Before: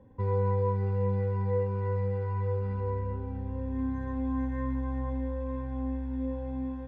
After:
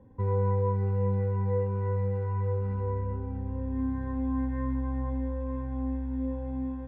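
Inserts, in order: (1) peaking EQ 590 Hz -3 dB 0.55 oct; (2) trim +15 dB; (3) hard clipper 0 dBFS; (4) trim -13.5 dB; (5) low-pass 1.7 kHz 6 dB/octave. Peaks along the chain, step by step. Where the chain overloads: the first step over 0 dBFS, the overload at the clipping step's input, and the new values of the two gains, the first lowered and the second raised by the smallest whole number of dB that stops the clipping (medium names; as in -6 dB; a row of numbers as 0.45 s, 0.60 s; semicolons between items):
-18.0 dBFS, -3.0 dBFS, -3.0 dBFS, -16.5 dBFS, -17.0 dBFS; nothing clips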